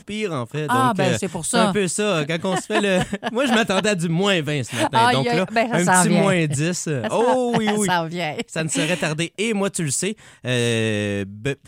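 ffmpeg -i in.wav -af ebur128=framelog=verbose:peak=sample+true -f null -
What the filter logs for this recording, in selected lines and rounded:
Integrated loudness:
  I:         -20.2 LUFS
  Threshold: -30.2 LUFS
Loudness range:
  LRA:         3.8 LU
  Threshold: -39.9 LUFS
  LRA low:   -22.2 LUFS
  LRA high:  -18.4 LUFS
Sample peak:
  Peak:       -2.9 dBFS
True peak:
  Peak:       -2.9 dBFS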